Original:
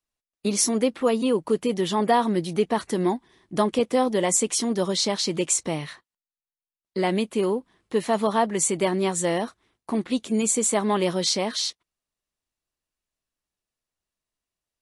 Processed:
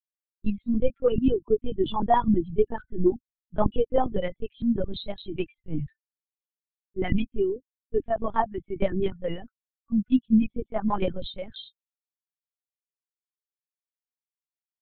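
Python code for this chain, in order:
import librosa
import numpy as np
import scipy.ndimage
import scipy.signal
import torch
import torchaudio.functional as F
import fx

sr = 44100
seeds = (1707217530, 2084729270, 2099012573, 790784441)

y = fx.bin_expand(x, sr, power=3.0)
y = fx.lpc_vocoder(y, sr, seeds[0], excitation='pitch_kept', order=8)
y = fx.low_shelf(y, sr, hz=380.0, db=9.5)
y = y * librosa.db_to_amplitude(1.0)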